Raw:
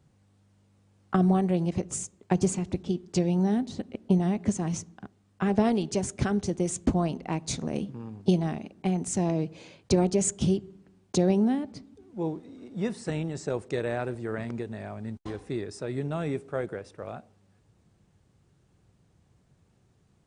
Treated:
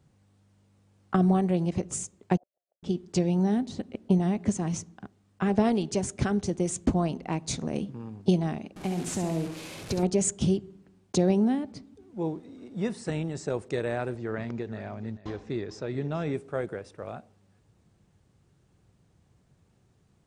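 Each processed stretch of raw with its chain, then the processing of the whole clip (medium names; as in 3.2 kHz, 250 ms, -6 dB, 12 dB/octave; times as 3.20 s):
2.37–2.83 s: Butterworth band-pass 620 Hz, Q 5.1 + compression 2:1, threshold -57 dBFS + inverted gate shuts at -51 dBFS, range -40 dB
8.76–10.03 s: one-bit delta coder 64 kbps, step -36.5 dBFS + compression, threshold -25 dBFS + flutter echo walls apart 11.5 m, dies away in 0.54 s
14.16–16.34 s: steep low-pass 6.8 kHz + delay 435 ms -16 dB
whole clip: none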